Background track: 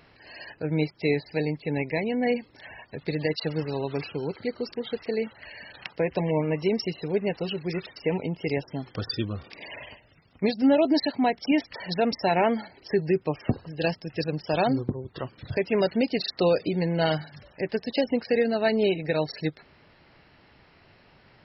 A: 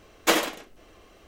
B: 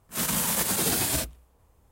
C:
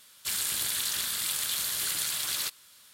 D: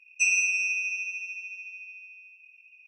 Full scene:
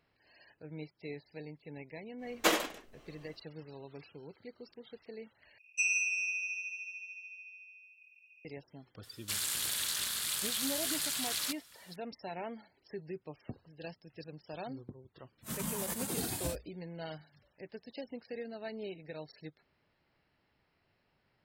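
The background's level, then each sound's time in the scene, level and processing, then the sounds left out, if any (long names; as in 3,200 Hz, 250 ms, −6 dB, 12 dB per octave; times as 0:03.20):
background track −19 dB
0:02.17: mix in A −6.5 dB, fades 0.10 s
0:05.58: overwrite with D −7 dB
0:09.03: mix in C −3.5 dB + highs frequency-modulated by the lows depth 0.16 ms
0:15.31: mix in B −10 dB + every bin expanded away from the loudest bin 1.5 to 1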